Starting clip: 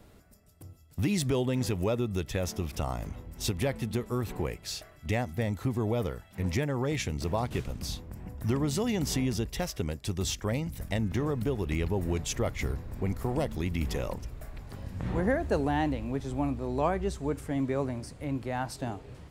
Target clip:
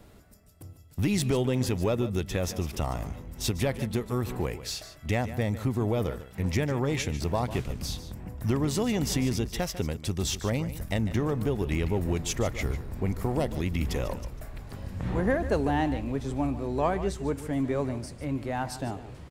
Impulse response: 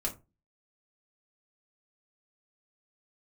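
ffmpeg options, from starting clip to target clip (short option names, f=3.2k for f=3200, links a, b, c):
-filter_complex "[0:a]asplit=2[a][b];[b]aeval=exprs='clip(val(0),-1,0.0168)':c=same,volume=-10dB[c];[a][c]amix=inputs=2:normalize=0,aecho=1:1:148:0.211"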